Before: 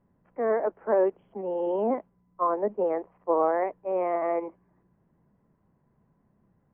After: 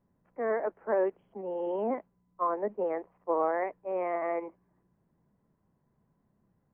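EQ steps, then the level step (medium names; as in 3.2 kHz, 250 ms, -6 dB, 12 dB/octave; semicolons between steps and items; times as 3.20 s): dynamic bell 2 kHz, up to +6 dB, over -45 dBFS, Q 1.3; -5.0 dB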